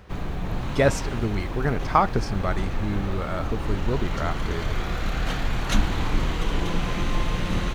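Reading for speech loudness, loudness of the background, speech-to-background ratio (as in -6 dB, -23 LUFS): -27.5 LUFS, -29.5 LUFS, 2.0 dB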